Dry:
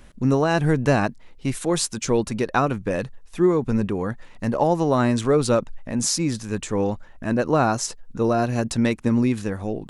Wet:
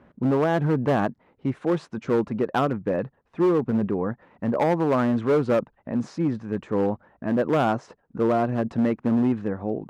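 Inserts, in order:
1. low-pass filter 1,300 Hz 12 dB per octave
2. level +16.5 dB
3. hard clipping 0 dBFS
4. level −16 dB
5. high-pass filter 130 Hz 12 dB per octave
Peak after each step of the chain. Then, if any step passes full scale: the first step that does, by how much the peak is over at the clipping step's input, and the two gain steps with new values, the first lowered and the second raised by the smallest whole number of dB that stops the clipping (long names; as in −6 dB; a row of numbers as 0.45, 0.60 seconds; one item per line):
−7.0, +9.5, 0.0, −16.0, −11.0 dBFS
step 2, 9.5 dB
step 2 +6.5 dB, step 4 −6 dB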